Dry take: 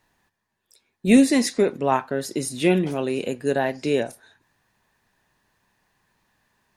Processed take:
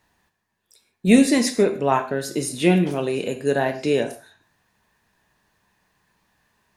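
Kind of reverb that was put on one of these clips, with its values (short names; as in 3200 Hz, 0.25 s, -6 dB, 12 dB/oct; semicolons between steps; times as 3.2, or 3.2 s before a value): non-linear reverb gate 0.18 s falling, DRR 7 dB; gain +1 dB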